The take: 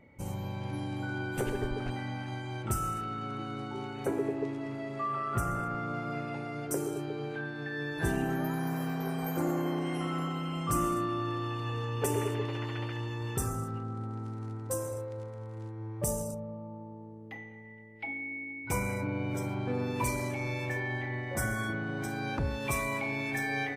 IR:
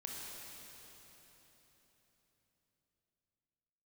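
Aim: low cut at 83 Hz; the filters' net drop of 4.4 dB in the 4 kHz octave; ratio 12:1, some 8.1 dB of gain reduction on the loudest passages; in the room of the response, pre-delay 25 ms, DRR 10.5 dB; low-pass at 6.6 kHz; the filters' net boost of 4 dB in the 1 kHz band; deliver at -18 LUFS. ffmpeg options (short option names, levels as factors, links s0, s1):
-filter_complex "[0:a]highpass=83,lowpass=6600,equalizer=f=1000:t=o:g=5.5,equalizer=f=4000:t=o:g=-6,acompressor=threshold=0.0224:ratio=12,asplit=2[s0][s1];[1:a]atrim=start_sample=2205,adelay=25[s2];[s1][s2]afir=irnorm=-1:irlink=0,volume=0.335[s3];[s0][s3]amix=inputs=2:normalize=0,volume=9.44"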